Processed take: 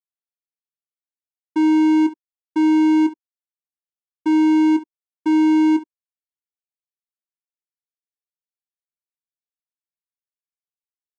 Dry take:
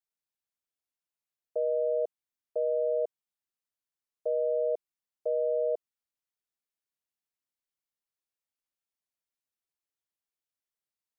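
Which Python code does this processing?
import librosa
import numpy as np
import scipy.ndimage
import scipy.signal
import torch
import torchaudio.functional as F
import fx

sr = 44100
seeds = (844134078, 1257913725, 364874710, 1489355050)

y = fx.peak_eq(x, sr, hz=490.0, db=5.5, octaves=0.36)
y = fx.fuzz(y, sr, gain_db=53.0, gate_db=-56.0)
y = fx.vocoder(y, sr, bands=4, carrier='square', carrier_hz=312.0)
y = fx.room_early_taps(y, sr, ms=(22, 67), db=(-10.0, -17.0))
y = y * 10.0 ** (-2.0 / 20.0)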